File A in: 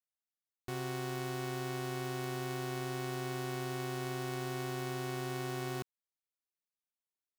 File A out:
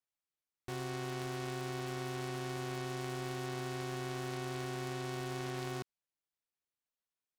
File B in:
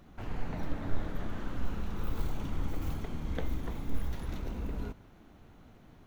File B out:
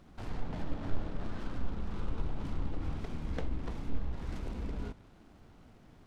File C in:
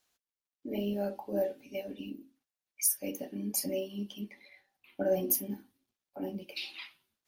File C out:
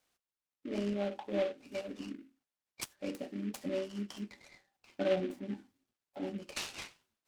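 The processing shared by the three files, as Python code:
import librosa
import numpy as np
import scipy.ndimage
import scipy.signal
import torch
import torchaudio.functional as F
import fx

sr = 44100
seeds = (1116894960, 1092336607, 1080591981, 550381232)

y = fx.dynamic_eq(x, sr, hz=5300.0, q=1.1, threshold_db=-60.0, ratio=4.0, max_db=4)
y = fx.env_lowpass_down(y, sr, base_hz=1400.0, full_db=-26.0)
y = fx.noise_mod_delay(y, sr, seeds[0], noise_hz=2000.0, depth_ms=0.047)
y = y * librosa.db_to_amplitude(-1.5)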